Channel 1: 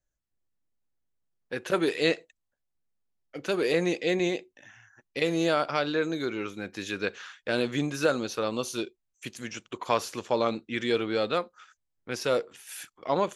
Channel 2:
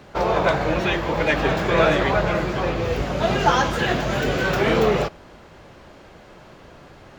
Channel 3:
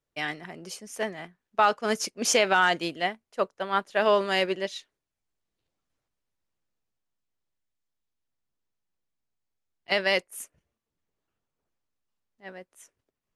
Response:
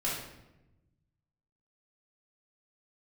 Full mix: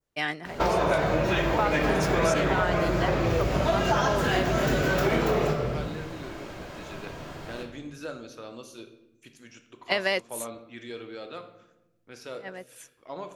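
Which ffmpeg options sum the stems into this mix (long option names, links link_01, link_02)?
-filter_complex "[0:a]volume=-15dB,asplit=2[link_01][link_02];[link_02]volume=-10dB[link_03];[1:a]highshelf=frequency=7700:gain=8,adelay=450,volume=-1dB,asplit=2[link_04][link_05];[link_05]volume=-4.5dB[link_06];[2:a]volume=2.5dB[link_07];[3:a]atrim=start_sample=2205[link_08];[link_03][link_06]amix=inputs=2:normalize=0[link_09];[link_09][link_08]afir=irnorm=-1:irlink=0[link_10];[link_01][link_04][link_07][link_10]amix=inputs=4:normalize=0,adynamicequalizer=threshold=0.0316:dfrequency=3100:dqfactor=0.95:tfrequency=3100:tqfactor=0.95:attack=5:release=100:ratio=0.375:range=2:mode=cutabove:tftype=bell,acompressor=threshold=-21dB:ratio=6"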